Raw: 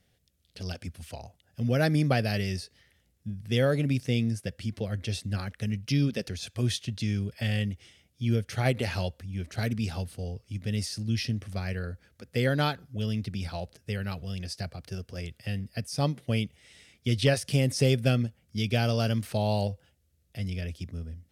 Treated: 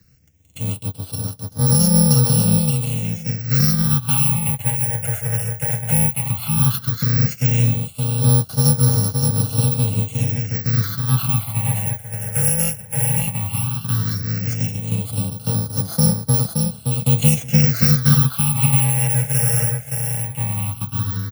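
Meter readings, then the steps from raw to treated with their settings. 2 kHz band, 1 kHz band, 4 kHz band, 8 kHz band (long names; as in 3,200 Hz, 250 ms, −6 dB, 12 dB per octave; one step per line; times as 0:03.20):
+3.5 dB, +6.0 dB, +6.5 dB, +22.0 dB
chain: samples in bit-reversed order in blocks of 128 samples
parametric band 87 Hz +7 dB 2.3 octaves
comb filter 6.2 ms, depth 38%
in parallel at +0.5 dB: downward compressor, threshold −36 dBFS, peak gain reduction 19.5 dB
on the sum: frequency shifter +15 Hz
dynamic equaliser 7,800 Hz, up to −7 dB, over −52 dBFS, Q 7.2
repeating echo 571 ms, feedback 21%, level −4 dB
all-pass phaser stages 6, 0.14 Hz, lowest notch 290–2,400 Hz
level +5.5 dB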